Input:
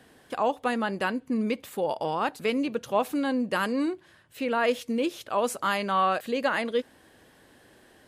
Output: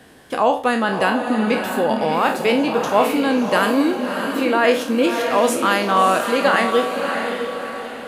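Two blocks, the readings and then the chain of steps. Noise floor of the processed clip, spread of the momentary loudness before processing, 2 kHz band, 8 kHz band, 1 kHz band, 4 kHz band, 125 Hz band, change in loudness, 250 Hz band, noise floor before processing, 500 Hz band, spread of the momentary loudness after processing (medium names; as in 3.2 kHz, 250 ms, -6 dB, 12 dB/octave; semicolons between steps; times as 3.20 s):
-32 dBFS, 5 LU, +10.5 dB, +11.0 dB, +10.0 dB, +10.5 dB, +9.0 dB, +9.5 dB, +9.0 dB, -58 dBFS, +10.0 dB, 6 LU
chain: spectral sustain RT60 0.36 s; echo that smears into a reverb 632 ms, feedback 45%, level -5.5 dB; trim +7.5 dB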